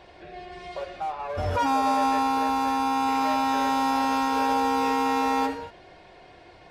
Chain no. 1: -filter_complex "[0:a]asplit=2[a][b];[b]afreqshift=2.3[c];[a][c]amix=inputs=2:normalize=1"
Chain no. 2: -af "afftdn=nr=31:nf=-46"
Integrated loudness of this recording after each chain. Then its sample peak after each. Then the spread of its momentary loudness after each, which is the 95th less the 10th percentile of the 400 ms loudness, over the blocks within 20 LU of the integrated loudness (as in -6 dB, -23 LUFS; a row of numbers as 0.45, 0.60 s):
-27.5, -24.5 LUFS; -15.0, -15.5 dBFS; 15, 15 LU